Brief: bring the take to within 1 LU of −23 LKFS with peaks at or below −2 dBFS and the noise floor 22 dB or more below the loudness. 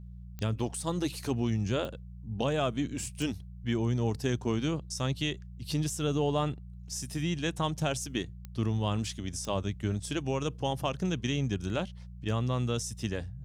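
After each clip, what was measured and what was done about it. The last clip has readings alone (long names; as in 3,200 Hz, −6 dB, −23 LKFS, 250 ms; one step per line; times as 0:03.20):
number of clicks 5; mains hum 60 Hz; hum harmonics up to 180 Hz; level of the hum −42 dBFS; integrated loudness −32.5 LKFS; sample peak −16.0 dBFS; target loudness −23.0 LKFS
→ click removal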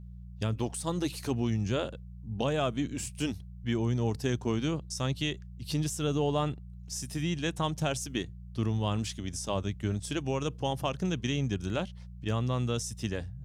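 number of clicks 0; mains hum 60 Hz; hum harmonics up to 180 Hz; level of the hum −42 dBFS
→ hum removal 60 Hz, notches 3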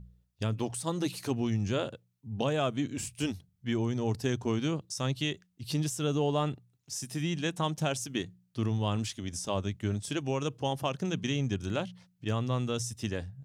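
mains hum none found; integrated loudness −32.5 LKFS; sample peak −16.0 dBFS; target loudness −23.0 LKFS
→ level +9.5 dB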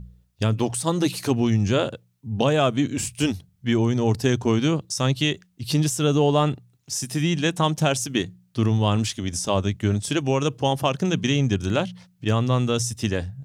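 integrated loudness −23.0 LKFS; sample peak −6.5 dBFS; background noise floor −63 dBFS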